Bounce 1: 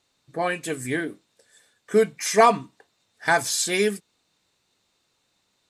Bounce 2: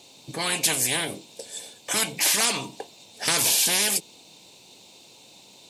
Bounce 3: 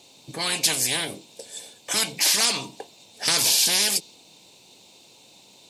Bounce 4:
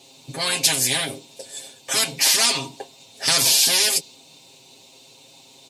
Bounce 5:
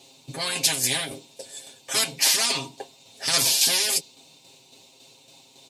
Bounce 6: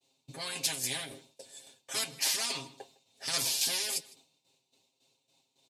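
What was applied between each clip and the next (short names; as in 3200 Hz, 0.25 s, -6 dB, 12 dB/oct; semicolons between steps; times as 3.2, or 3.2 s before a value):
HPF 140 Hz 12 dB/oct; band shelf 1500 Hz -14.5 dB 1 oct; spectral compressor 10:1; gain -2 dB
dynamic EQ 4800 Hz, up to +7 dB, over -39 dBFS, Q 1.6; gain -1.5 dB
comb 7.5 ms, depth 98%
tremolo saw down 3.6 Hz, depth 45%; gain -1.5 dB
outdoor echo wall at 27 m, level -20 dB; expander -44 dBFS; added harmonics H 3 -22 dB, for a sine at -4.5 dBFS; gain -8 dB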